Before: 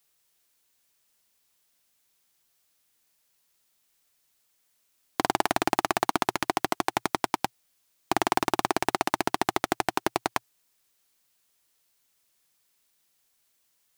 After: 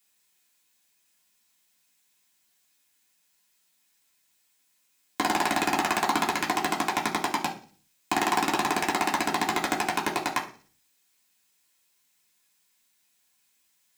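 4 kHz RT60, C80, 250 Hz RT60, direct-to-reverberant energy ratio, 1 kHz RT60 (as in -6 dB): 0.55 s, 15.5 dB, 0.55 s, -3.5 dB, 0.40 s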